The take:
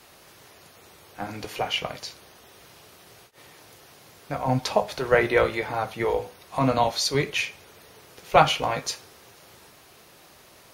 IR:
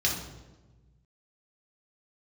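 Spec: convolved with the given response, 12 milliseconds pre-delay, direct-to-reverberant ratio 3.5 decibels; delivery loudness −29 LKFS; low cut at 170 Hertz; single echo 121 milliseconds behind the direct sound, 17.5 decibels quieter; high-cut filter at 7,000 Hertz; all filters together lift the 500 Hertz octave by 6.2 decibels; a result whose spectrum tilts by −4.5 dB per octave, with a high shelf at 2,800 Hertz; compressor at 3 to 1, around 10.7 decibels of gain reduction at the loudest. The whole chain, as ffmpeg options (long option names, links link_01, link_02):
-filter_complex "[0:a]highpass=170,lowpass=7000,equalizer=frequency=500:width_type=o:gain=7.5,highshelf=frequency=2800:gain=-5.5,acompressor=threshold=-23dB:ratio=3,aecho=1:1:121:0.133,asplit=2[link_01][link_02];[1:a]atrim=start_sample=2205,adelay=12[link_03];[link_02][link_03]afir=irnorm=-1:irlink=0,volume=-13dB[link_04];[link_01][link_04]amix=inputs=2:normalize=0,volume=-2.5dB"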